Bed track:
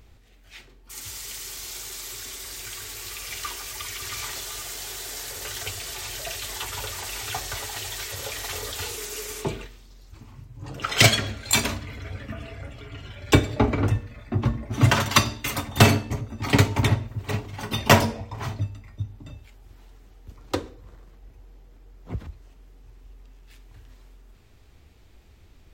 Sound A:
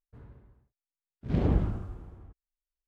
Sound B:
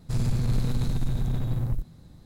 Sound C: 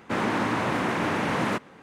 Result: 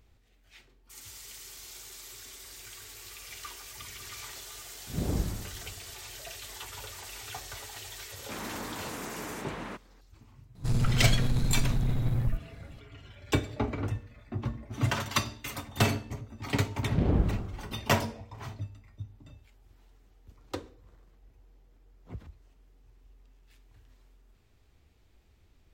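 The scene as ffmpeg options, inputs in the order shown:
-filter_complex "[1:a]asplit=2[a][b];[0:a]volume=-10dB[c];[a]atrim=end=2.87,asetpts=PTS-STARTPTS,volume=-5dB,afade=t=in:d=0.004:c=hsin,afade=t=out:st=2.866:d=0.004:c=hsin,adelay=3640[d];[3:a]atrim=end=1.82,asetpts=PTS-STARTPTS,volume=-14dB,afade=t=in:d=0.004:c=hsin,afade=t=out:st=1.816:d=0.004:c=hsin,adelay=8190[e];[2:a]atrim=end=2.25,asetpts=PTS-STARTPTS,volume=-1dB,afade=t=in:d=0.004:c=hsin,afade=t=out:st=2.246:d=0.004:c=hsin,adelay=10550[f];[b]atrim=end=2.87,asetpts=PTS-STARTPTS,afade=t=in:d=0.004:c=hsin,afade=t=out:st=2.866:d=0.004:c=hsin,adelay=15640[g];[c][d][e][f][g]amix=inputs=5:normalize=0"

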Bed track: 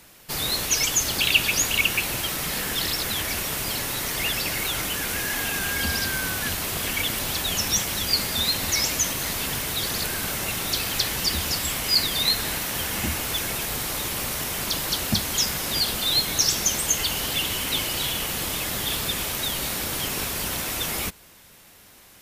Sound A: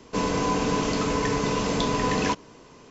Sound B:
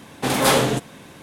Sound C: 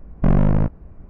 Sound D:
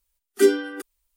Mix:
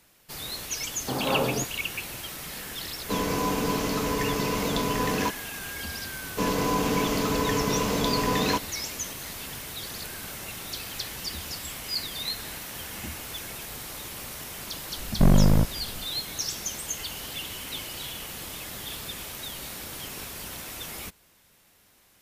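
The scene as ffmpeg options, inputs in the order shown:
-filter_complex "[1:a]asplit=2[a][b];[0:a]volume=-10dB[c];[2:a]lowpass=f=1.3k:w=0.5412,lowpass=f=1.3k:w=1.3066,atrim=end=1.22,asetpts=PTS-STARTPTS,volume=-7.5dB,afade=t=in:d=0.004:c=hsin,afade=t=out:st=1.216:d=0.004:c=hsin,adelay=850[d];[a]atrim=end=2.9,asetpts=PTS-STARTPTS,volume=-2.5dB,afade=t=in:d=0.004:c=hsin,afade=t=out:st=2.896:d=0.004:c=hsin,adelay=2960[e];[b]atrim=end=2.9,asetpts=PTS-STARTPTS,volume=-1dB,afade=t=in:d=0.004:c=hsin,afade=t=out:st=2.896:d=0.004:c=hsin,adelay=6240[f];[3:a]atrim=end=1.09,asetpts=PTS-STARTPTS,volume=-2dB,afade=t=in:d=0.004:c=hsin,afade=t=out:st=1.086:d=0.004:c=hsin,adelay=14970[g];[c][d][e][f][g]amix=inputs=5:normalize=0"

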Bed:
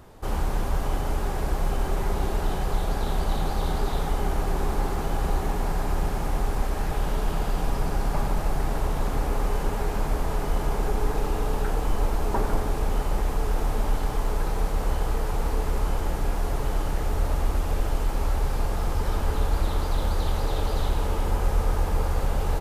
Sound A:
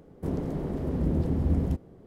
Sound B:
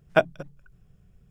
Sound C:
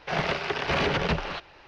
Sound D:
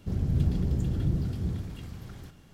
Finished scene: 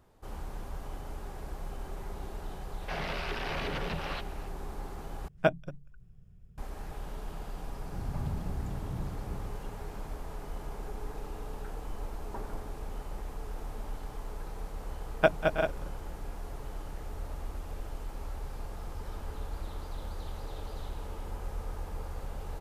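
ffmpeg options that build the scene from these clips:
-filter_complex "[2:a]asplit=2[a][b];[0:a]volume=-14.5dB[c];[3:a]alimiter=level_in=1.5dB:limit=-24dB:level=0:latency=1:release=24,volume=-1.5dB[d];[a]lowshelf=f=210:g=10[e];[b]aecho=1:1:192|216|320|346|389:0.141|0.562|0.168|0.376|0.398[f];[c]asplit=2[g][h];[g]atrim=end=5.284[i];[e]atrim=end=1.3,asetpts=PTS-STARTPTS,volume=-7dB[j];[h]atrim=start=6.576[k];[d]atrim=end=1.67,asetpts=PTS-STARTPTS,volume=-2.5dB,afade=t=in:d=0.004:c=hsin,afade=t=out:st=1.666:d=0.004:c=hsin,adelay=2810[l];[4:a]atrim=end=2.53,asetpts=PTS-STARTPTS,volume=-10.5dB,afade=t=in:d=0.004:c=hsin,afade=t=out:st=2.526:d=0.004:c=hsin,adelay=346626S[m];[f]atrim=end=1.3,asetpts=PTS-STARTPTS,volume=-4dB,afade=t=in:d=0.004:c=hsin,afade=t=out:st=1.296:d=0.004:c=hsin,adelay=15070[n];[i][j]acrossfade=d=0.004:c1=hsin:c2=hsin[o];[o][k]acrossfade=d=0.004:c1=hsin:c2=hsin[p];[p][l][m][n]amix=inputs=4:normalize=0"

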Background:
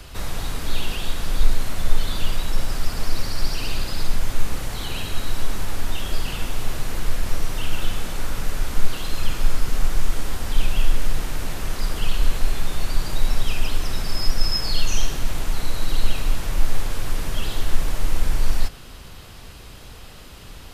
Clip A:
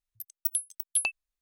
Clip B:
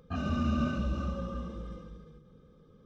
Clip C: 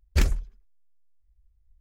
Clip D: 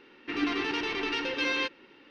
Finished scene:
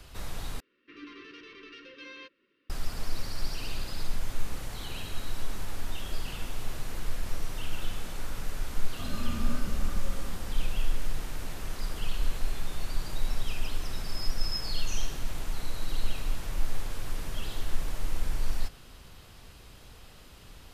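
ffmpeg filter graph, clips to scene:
-filter_complex "[0:a]volume=-9.5dB[a];[4:a]asuperstop=centerf=760:order=20:qfactor=1.9[b];[a]asplit=2[c][d];[c]atrim=end=0.604[e];[b]atrim=end=2.1,asetpts=PTS-STARTPTS,volume=-17dB[f];[d]atrim=start=2.696[g];[2:a]atrim=end=2.85,asetpts=PTS-STARTPTS,volume=-7dB,afade=t=in:d=0.004:c=hsin,afade=t=out:st=2.846:d=0.004:c=hsin,adelay=8880[h];[e][f]acrossfade=d=0.004:c1=hsin:c2=hsin[i];[i][g]acrossfade=d=0.004:c1=hsin:c2=hsin[j];[j][h]amix=inputs=2:normalize=0"

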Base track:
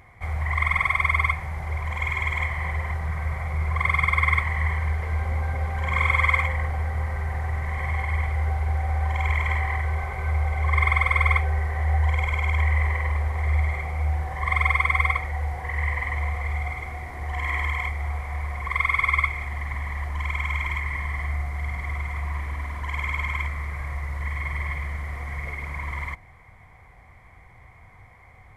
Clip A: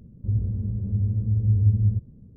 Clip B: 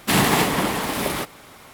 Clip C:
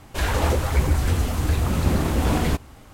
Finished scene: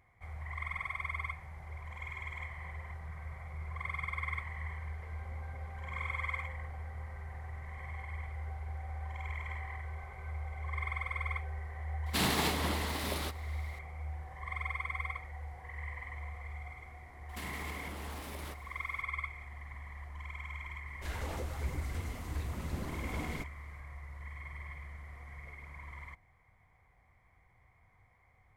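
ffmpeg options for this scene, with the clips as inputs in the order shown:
-filter_complex "[2:a]asplit=2[a][b];[0:a]volume=-16.5dB[c];[a]equalizer=f=4.1k:w=2.2:g=6.5[d];[b]acompressor=threshold=-27dB:ratio=6:attack=3.2:release=140:knee=1:detection=peak[e];[d]atrim=end=1.73,asetpts=PTS-STARTPTS,volume=-13.5dB,afade=t=in:d=0.004:c=hsin,afade=t=out:st=1.726:d=0.004:c=hsin,adelay=12060[f];[e]atrim=end=1.73,asetpts=PTS-STARTPTS,volume=-15dB,afade=t=in:d=0.004:c=hsin,afade=t=out:st=1.726:d=0.004:c=hsin,adelay=17290[g];[3:a]atrim=end=2.93,asetpts=PTS-STARTPTS,volume=-18dB,afade=t=in:d=0.004:c=hsin,afade=t=out:st=2.926:d=0.004:c=hsin,adelay=20870[h];[c][f][g][h]amix=inputs=4:normalize=0"

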